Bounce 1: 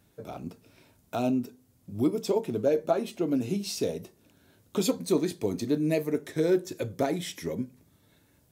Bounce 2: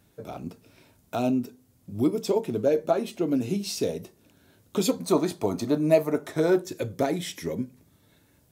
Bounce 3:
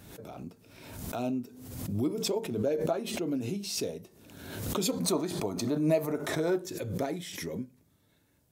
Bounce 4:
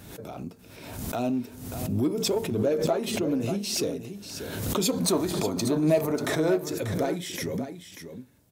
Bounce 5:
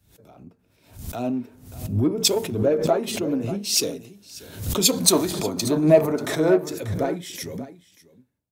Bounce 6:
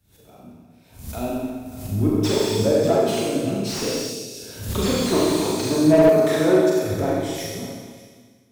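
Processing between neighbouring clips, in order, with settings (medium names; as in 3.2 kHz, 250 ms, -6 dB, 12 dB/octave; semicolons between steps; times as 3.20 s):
time-frequency box 5.02–6.62 s, 560–1500 Hz +9 dB; trim +2 dB
swell ahead of each attack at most 48 dB/s; trim -7.5 dB
delay 589 ms -10.5 dB; in parallel at -10.5 dB: overload inside the chain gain 31.5 dB; on the sum: trim +3 dB
three bands expanded up and down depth 100%; trim +2.5 dB
Schroeder reverb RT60 1.5 s, combs from 29 ms, DRR -4 dB; slew-rate limiter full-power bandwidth 250 Hz; trim -2.5 dB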